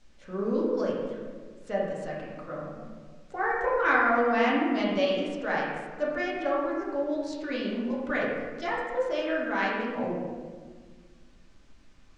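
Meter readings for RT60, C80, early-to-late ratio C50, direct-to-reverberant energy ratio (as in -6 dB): 1.6 s, 2.5 dB, 0.0 dB, -5.5 dB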